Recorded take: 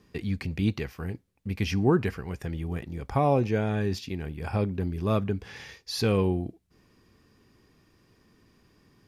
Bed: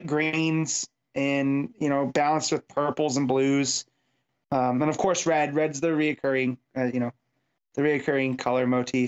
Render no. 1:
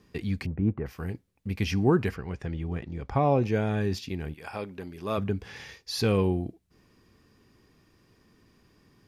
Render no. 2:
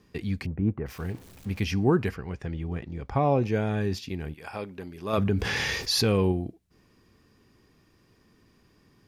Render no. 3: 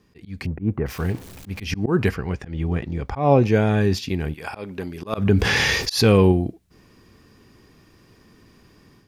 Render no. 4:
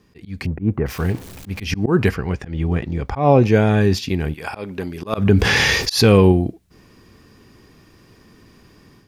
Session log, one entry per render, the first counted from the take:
0:00.46–0:00.86: low-pass filter 1,400 Hz 24 dB per octave; 0:02.16–0:03.42: high-frequency loss of the air 93 metres; 0:04.33–0:05.17: high-pass filter 1,000 Hz → 440 Hz 6 dB per octave
0:00.88–0:01.60: converter with a step at zero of −44 dBFS; 0:05.13–0:06.32: envelope flattener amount 70%
volume swells 165 ms; automatic gain control gain up to 9 dB
level +3.5 dB; brickwall limiter −3 dBFS, peak gain reduction 2 dB

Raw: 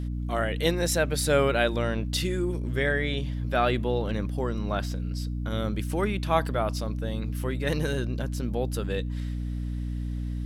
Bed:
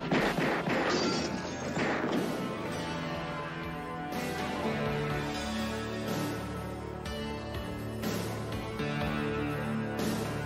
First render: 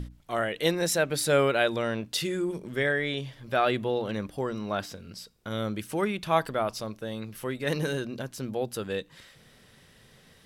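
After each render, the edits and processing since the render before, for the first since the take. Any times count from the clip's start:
mains-hum notches 60/120/180/240/300 Hz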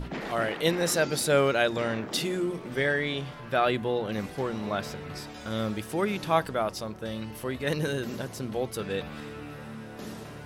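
mix in bed −8 dB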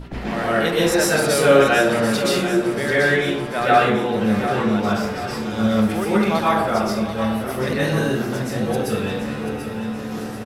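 repeating echo 737 ms, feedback 53%, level −10 dB
dense smooth reverb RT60 0.71 s, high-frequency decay 0.55×, pre-delay 110 ms, DRR −8 dB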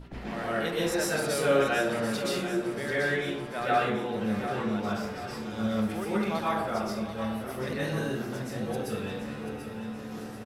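level −10.5 dB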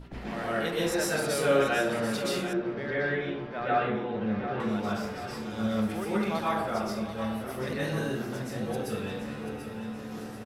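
0:02.53–0:04.60: high-frequency loss of the air 270 metres

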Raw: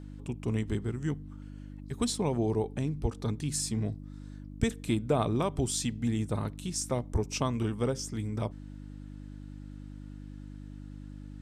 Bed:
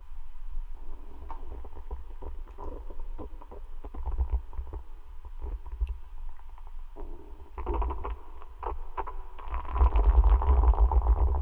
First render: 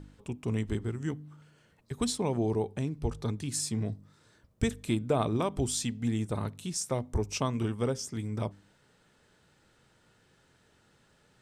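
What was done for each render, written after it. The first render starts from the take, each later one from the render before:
hum removal 50 Hz, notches 6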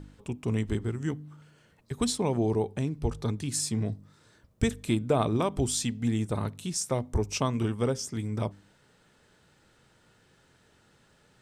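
level +2.5 dB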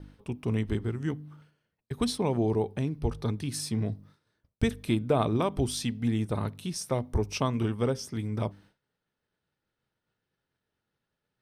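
downward expander −49 dBFS
parametric band 7,300 Hz −14 dB 0.34 octaves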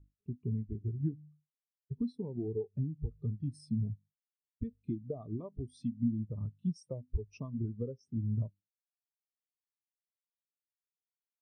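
downward compressor 20 to 1, threshold −31 dBFS, peak gain reduction 13 dB
every bin expanded away from the loudest bin 2.5 to 1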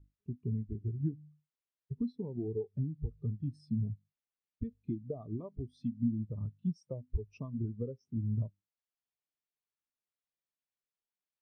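high-frequency loss of the air 130 metres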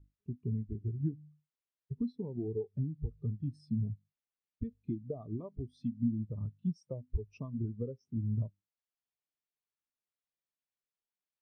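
no processing that can be heard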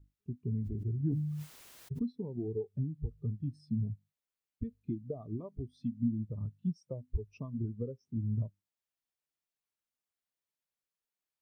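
0:00.54–0:02.02: level that may fall only so fast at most 29 dB per second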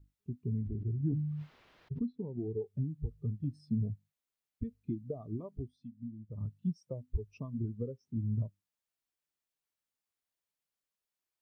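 0:00.61–0:02.62: high-frequency loss of the air 320 metres
0:03.44–0:03.92: parametric band 520 Hz +11.5 dB 0.96 octaves
0:05.62–0:06.41: duck −12 dB, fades 0.15 s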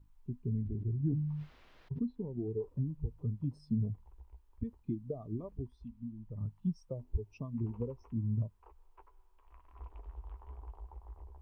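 mix in bed −25.5 dB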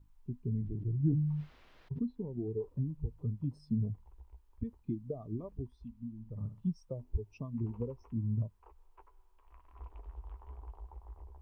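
0:00.61–0:01.41: comb filter 6.4 ms, depth 47%
0:06.15–0:06.66: flutter between parallel walls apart 10.8 metres, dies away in 0.37 s

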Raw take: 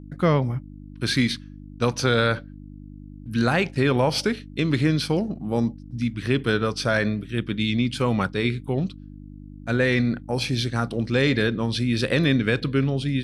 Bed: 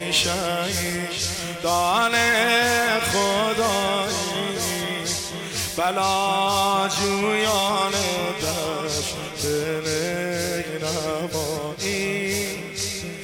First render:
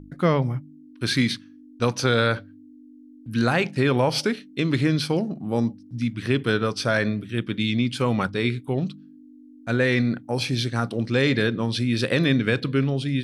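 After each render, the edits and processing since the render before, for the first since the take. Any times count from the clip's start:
hum removal 50 Hz, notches 4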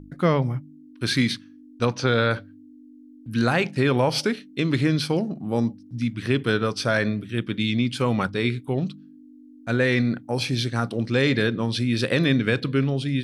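0:01.85–0:02.31: high-frequency loss of the air 92 metres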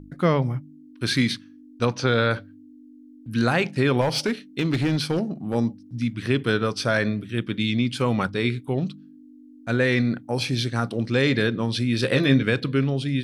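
0:04.01–0:05.55: hard clipping −17.5 dBFS
0:12.01–0:12.43: double-tracking delay 15 ms −6 dB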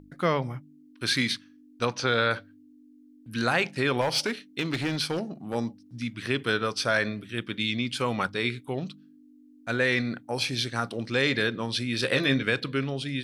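low-shelf EQ 420 Hz −10 dB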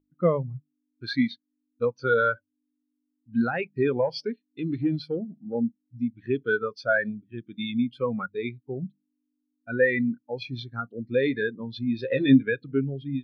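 in parallel at 0 dB: downward compressor, threshold −34 dBFS, peak gain reduction 14 dB
on the sum: every bin expanded away from the loudest bin 2.5 to 1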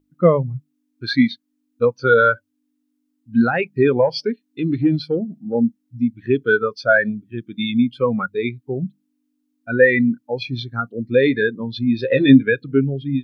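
level +8.5 dB
brickwall limiter −1 dBFS, peak gain reduction 2 dB

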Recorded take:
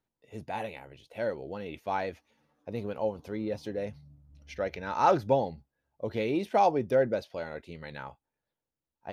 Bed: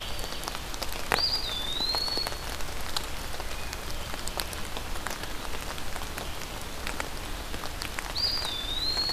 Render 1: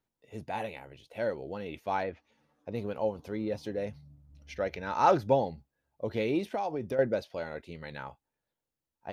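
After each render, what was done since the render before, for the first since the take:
0:02.02–0:02.74: treble cut that deepens with the level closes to 2,200 Hz, closed at −33 dBFS
0:06.39–0:06.99: downward compressor, threshold −29 dBFS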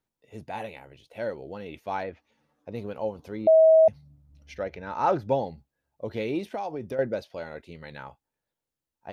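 0:03.47–0:03.88: beep over 641 Hz −12.5 dBFS
0:04.63–0:05.29: high-shelf EQ 2,900 Hz −9 dB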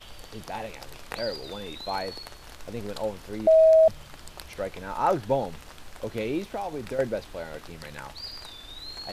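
mix in bed −11 dB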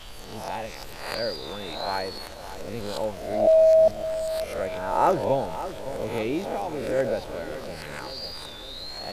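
peak hold with a rise ahead of every peak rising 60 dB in 0.71 s
feedback echo with a low-pass in the loop 563 ms, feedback 55%, level −12 dB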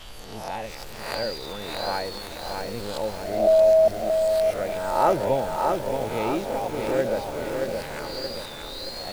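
feedback echo at a low word length 626 ms, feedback 55%, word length 7 bits, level −4 dB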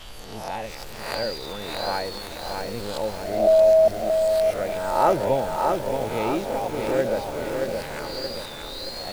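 level +1 dB

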